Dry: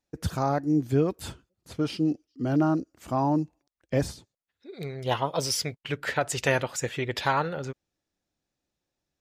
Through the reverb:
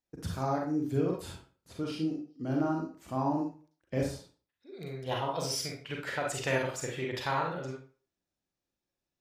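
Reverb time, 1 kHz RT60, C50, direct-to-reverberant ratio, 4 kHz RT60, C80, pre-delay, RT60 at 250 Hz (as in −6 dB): 0.40 s, 0.40 s, 4.0 dB, −0.5 dB, 0.30 s, 10.0 dB, 35 ms, 0.35 s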